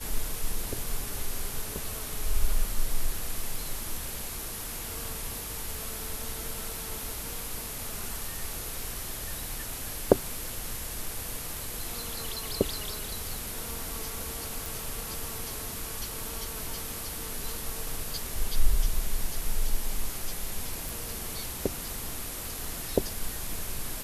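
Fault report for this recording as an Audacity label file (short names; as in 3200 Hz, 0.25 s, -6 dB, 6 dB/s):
14.660000	14.660000	pop
20.890000	20.890000	pop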